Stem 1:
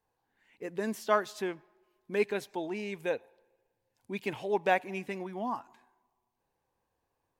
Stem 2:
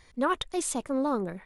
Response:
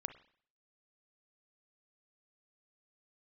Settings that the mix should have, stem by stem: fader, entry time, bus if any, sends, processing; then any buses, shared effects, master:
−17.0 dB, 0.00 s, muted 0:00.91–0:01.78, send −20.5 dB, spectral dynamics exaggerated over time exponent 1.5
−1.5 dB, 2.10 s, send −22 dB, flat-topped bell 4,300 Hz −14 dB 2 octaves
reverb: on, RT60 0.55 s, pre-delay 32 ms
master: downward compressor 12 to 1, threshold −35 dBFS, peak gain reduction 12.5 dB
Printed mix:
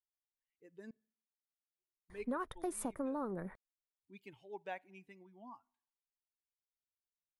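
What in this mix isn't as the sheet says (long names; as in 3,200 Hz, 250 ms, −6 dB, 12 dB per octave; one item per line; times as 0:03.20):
stem 2: send off
reverb return +6.5 dB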